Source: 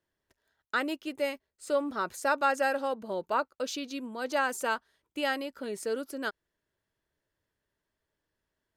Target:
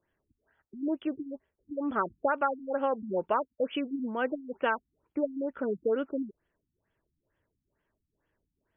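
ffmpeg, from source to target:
-af "acompressor=threshold=-29dB:ratio=6,afftfilt=real='re*lt(b*sr/1024,290*pow(3500/290,0.5+0.5*sin(2*PI*2.2*pts/sr)))':imag='im*lt(b*sr/1024,290*pow(3500/290,0.5+0.5*sin(2*PI*2.2*pts/sr)))':win_size=1024:overlap=0.75,volume=6dB"

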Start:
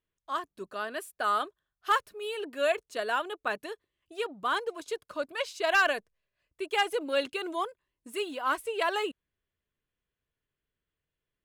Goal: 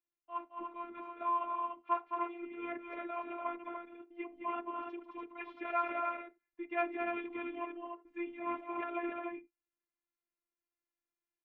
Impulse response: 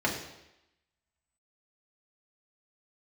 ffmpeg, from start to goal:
-filter_complex "[0:a]asetrate=37084,aresample=44100,atempo=1.18921,highpass=150,equalizer=f=220:t=q:w=4:g=7,equalizer=f=420:t=q:w=4:g=-9,equalizer=f=1.5k:t=q:w=4:g=-6,lowpass=f=2.3k:w=0.5412,lowpass=f=2.3k:w=1.3066,aecho=1:1:215.7|291.5:0.501|0.562,asplit=2[a][b];[1:a]atrim=start_sample=2205,afade=t=out:st=0.16:d=0.01,atrim=end_sample=7497,asetrate=52920,aresample=44100[c];[b][c]afir=irnorm=-1:irlink=0,volume=-22.5dB[d];[a][d]amix=inputs=2:normalize=0,afftfilt=real='hypot(re,im)*cos(PI*b)':imag='0':win_size=512:overlap=0.75,volume=-5dB"

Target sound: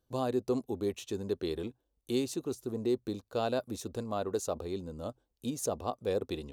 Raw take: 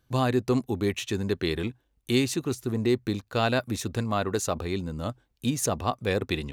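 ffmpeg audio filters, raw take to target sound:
-af "equalizer=f=125:t=o:w=1:g=-6,equalizer=f=500:t=o:w=1:g=6,equalizer=f=2k:t=o:w=1:g=-11,volume=-8dB"

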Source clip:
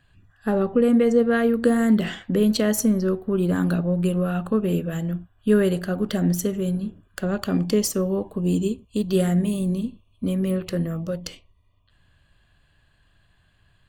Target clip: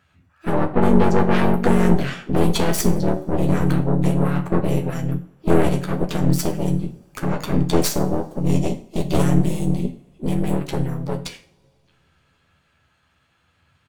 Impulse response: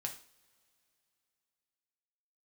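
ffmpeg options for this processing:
-filter_complex "[0:a]highpass=110,asoftclip=type=tanh:threshold=-12.5dB,asplit=3[a][b][c];[b]asetrate=35002,aresample=44100,atempo=1.25992,volume=0dB[d];[c]asetrate=66075,aresample=44100,atempo=0.66742,volume=-11dB[e];[a][d][e]amix=inputs=3:normalize=0,aeval=exprs='0.473*(cos(1*acos(clip(val(0)/0.473,-1,1)))-cos(1*PI/2))+0.168*(cos(4*acos(clip(val(0)/0.473,-1,1)))-cos(4*PI/2))':c=same,asplit=2[f][g];[1:a]atrim=start_sample=2205,adelay=12[h];[g][h]afir=irnorm=-1:irlink=0,volume=-2.5dB[i];[f][i]amix=inputs=2:normalize=0,volume=-3dB"

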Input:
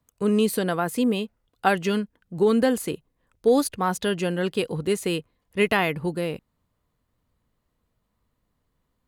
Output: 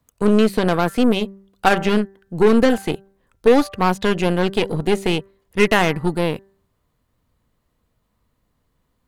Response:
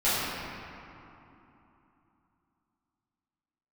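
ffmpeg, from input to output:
-filter_complex "[0:a]acrossover=split=4200[a][b];[b]acompressor=threshold=-44dB:ratio=4:attack=1:release=60[c];[a][c]amix=inputs=2:normalize=0,bandreject=f=195.3:t=h:w=4,bandreject=f=390.6:t=h:w=4,bandreject=f=585.9:t=h:w=4,bandreject=f=781.2:t=h:w=4,bandreject=f=976.5:t=h:w=4,bandreject=f=1.1718k:t=h:w=4,bandreject=f=1.3671k:t=h:w=4,bandreject=f=1.5624k:t=h:w=4,bandreject=f=1.7577k:t=h:w=4,bandreject=f=1.953k:t=h:w=4,aeval=exprs='0.398*(cos(1*acos(clip(val(0)/0.398,-1,1)))-cos(1*PI/2))+0.0398*(cos(8*acos(clip(val(0)/0.398,-1,1)))-cos(8*PI/2))':c=same,volume=5.5dB"

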